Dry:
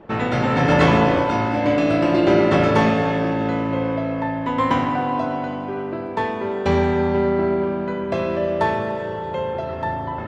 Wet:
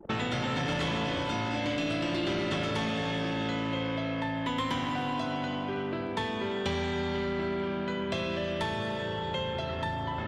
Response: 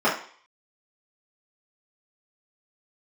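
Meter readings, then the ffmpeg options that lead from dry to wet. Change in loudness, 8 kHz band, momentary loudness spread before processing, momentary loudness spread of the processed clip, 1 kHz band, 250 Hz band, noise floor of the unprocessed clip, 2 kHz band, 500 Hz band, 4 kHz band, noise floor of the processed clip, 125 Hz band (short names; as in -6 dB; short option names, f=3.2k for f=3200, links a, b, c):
-11.0 dB, n/a, 10 LU, 3 LU, -12.0 dB, -11.5 dB, -28 dBFS, -8.0 dB, -13.0 dB, -0.5 dB, -34 dBFS, -10.5 dB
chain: -filter_complex "[0:a]highshelf=f=5.5k:g=10,asoftclip=type=tanh:threshold=-12dB,anlmdn=0.398,acrossover=split=270|1400|4100[a][b][c][d];[a]acompressor=threshold=-35dB:ratio=4[e];[b]acompressor=threshold=-37dB:ratio=4[f];[c]acompressor=threshold=-40dB:ratio=4[g];[d]acompressor=threshold=-49dB:ratio=4[h];[e][f][g][h]amix=inputs=4:normalize=0,equalizer=f=3.3k:t=o:w=0.37:g=8"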